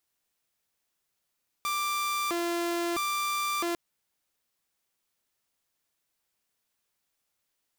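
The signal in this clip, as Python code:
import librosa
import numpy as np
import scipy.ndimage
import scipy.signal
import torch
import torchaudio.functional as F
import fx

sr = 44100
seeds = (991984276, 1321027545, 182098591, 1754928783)

y = fx.siren(sr, length_s=2.1, kind='hi-lo', low_hz=343.0, high_hz=1180.0, per_s=0.76, wave='saw', level_db=-25.0)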